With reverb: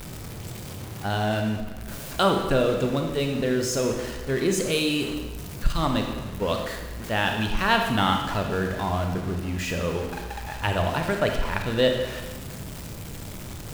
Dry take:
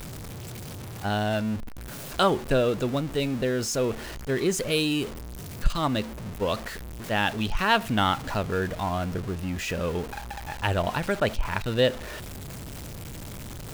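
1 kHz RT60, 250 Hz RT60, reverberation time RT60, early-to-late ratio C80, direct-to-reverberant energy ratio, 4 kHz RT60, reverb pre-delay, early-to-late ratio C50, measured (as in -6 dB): 1.2 s, 1.2 s, 1.2 s, 6.5 dB, 3.5 dB, 1.1 s, 30 ms, 5.0 dB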